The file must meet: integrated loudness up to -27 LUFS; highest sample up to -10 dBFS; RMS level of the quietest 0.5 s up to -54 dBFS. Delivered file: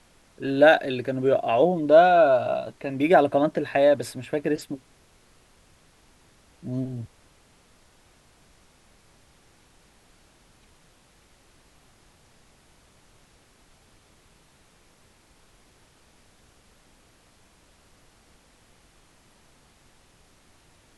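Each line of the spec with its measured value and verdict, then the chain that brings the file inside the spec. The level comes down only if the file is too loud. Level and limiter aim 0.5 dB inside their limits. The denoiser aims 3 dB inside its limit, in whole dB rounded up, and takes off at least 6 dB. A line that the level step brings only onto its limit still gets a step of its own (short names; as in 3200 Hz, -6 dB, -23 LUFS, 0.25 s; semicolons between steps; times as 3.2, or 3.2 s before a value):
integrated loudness -21.5 LUFS: fail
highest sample -4.0 dBFS: fail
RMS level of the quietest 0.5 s -58 dBFS: OK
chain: gain -6 dB; limiter -10.5 dBFS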